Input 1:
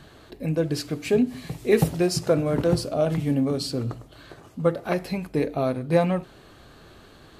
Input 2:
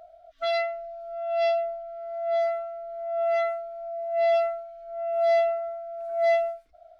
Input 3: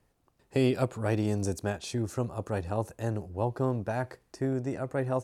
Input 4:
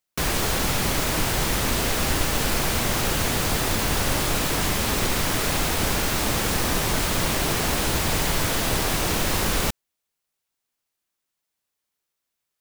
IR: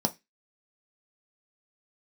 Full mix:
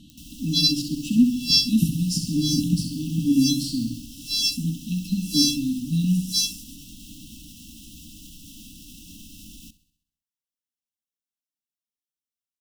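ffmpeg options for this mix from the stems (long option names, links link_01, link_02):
-filter_complex "[0:a]volume=-1dB,asplit=3[link_01][link_02][link_03];[link_02]volume=-15dB[link_04];[link_03]volume=-5.5dB[link_05];[1:a]dynaudnorm=framelen=120:gausssize=11:maxgain=8dB,aexciter=amount=13.7:drive=3.9:freq=4200,adelay=100,volume=0.5dB,asplit=2[link_06][link_07];[link_07]volume=-10.5dB[link_08];[3:a]alimiter=limit=-18dB:level=0:latency=1:release=76,volume=-15.5dB,asplit=3[link_09][link_10][link_11];[link_10]volume=-17.5dB[link_12];[link_11]volume=-17dB[link_13];[4:a]atrim=start_sample=2205[link_14];[link_04][link_08][link_12]amix=inputs=3:normalize=0[link_15];[link_15][link_14]afir=irnorm=-1:irlink=0[link_16];[link_05][link_13]amix=inputs=2:normalize=0,aecho=0:1:65|130|195|260|325|390|455|520:1|0.55|0.303|0.166|0.0915|0.0503|0.0277|0.0152[link_17];[link_01][link_06][link_09][link_16][link_17]amix=inputs=5:normalize=0,afftfilt=real='re*(1-between(b*sr/4096,320,2600))':imag='im*(1-between(b*sr/4096,320,2600))':win_size=4096:overlap=0.75"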